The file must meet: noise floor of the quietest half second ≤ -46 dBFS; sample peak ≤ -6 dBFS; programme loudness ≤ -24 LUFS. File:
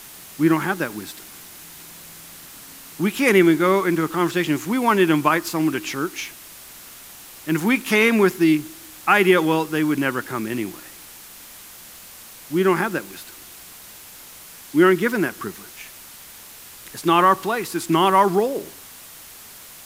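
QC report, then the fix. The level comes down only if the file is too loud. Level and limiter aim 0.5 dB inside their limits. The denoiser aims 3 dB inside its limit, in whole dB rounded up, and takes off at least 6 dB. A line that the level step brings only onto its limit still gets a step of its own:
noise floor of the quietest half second -42 dBFS: fail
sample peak -3.5 dBFS: fail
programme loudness -19.5 LUFS: fail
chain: trim -5 dB

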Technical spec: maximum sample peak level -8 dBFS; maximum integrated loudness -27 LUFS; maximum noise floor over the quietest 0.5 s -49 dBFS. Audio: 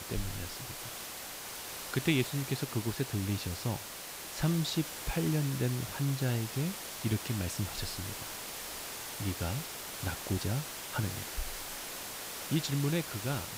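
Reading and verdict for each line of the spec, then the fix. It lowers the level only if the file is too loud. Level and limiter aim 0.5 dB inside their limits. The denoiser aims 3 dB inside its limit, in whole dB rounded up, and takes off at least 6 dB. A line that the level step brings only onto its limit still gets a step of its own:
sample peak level -17.0 dBFS: pass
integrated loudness -35.0 LUFS: pass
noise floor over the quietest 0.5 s -44 dBFS: fail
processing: noise reduction 8 dB, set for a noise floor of -44 dBFS

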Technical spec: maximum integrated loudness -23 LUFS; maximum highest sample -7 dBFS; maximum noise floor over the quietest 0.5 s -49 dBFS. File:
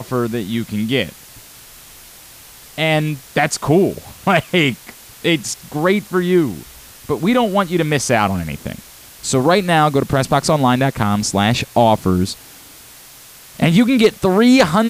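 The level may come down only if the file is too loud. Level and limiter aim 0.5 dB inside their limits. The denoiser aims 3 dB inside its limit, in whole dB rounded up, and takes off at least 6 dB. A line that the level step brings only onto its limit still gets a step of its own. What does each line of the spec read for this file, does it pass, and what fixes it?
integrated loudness -16.5 LUFS: fail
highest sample -3.0 dBFS: fail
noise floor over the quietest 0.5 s -41 dBFS: fail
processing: noise reduction 6 dB, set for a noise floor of -41 dBFS; trim -7 dB

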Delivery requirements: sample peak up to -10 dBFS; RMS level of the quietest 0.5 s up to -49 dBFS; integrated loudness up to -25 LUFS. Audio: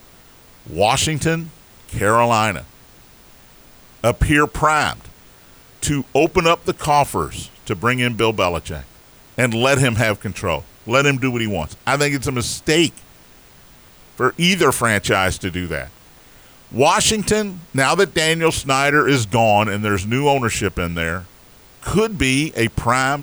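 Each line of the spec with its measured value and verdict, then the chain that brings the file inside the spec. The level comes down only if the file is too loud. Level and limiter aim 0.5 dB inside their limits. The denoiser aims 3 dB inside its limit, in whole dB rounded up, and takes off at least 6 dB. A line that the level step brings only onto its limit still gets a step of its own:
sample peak -3.5 dBFS: fail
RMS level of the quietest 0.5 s -46 dBFS: fail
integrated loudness -18.0 LUFS: fail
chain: trim -7.5 dB

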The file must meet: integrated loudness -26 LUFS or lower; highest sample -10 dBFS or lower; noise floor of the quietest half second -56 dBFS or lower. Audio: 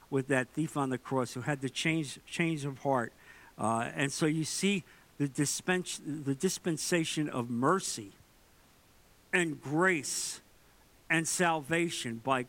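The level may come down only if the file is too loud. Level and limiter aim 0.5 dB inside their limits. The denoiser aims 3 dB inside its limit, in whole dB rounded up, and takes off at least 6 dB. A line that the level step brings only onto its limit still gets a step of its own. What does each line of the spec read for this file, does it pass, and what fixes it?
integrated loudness -32.0 LUFS: pass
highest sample -13.5 dBFS: pass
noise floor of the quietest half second -62 dBFS: pass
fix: none needed

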